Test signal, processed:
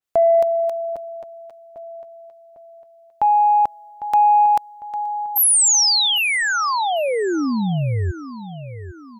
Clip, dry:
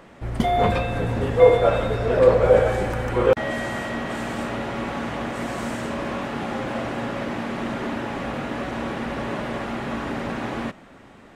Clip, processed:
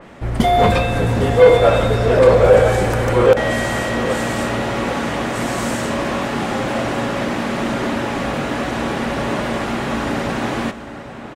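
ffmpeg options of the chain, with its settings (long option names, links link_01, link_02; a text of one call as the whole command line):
ffmpeg -i in.wav -filter_complex "[0:a]asplit=2[link_01][link_02];[link_02]adelay=802,lowpass=frequency=4900:poles=1,volume=-13dB,asplit=2[link_03][link_04];[link_04]adelay=802,lowpass=frequency=4900:poles=1,volume=0.42,asplit=2[link_05][link_06];[link_06]adelay=802,lowpass=frequency=4900:poles=1,volume=0.42,asplit=2[link_07][link_08];[link_08]adelay=802,lowpass=frequency=4900:poles=1,volume=0.42[link_09];[link_01][link_03][link_05][link_07][link_09]amix=inputs=5:normalize=0,acontrast=76,adynamicequalizer=threshold=0.0158:dfrequency=3800:dqfactor=0.7:tfrequency=3800:tqfactor=0.7:attack=5:release=100:ratio=0.375:range=3:mode=boostabove:tftype=highshelf" out.wav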